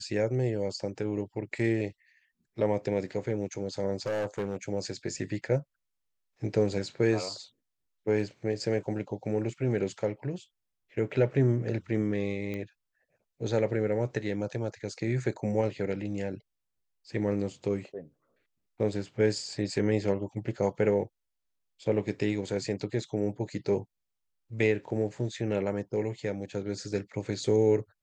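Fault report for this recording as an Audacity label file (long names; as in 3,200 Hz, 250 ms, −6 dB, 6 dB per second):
4.060000	4.560000	clipping −27 dBFS
12.540000	12.540000	click −24 dBFS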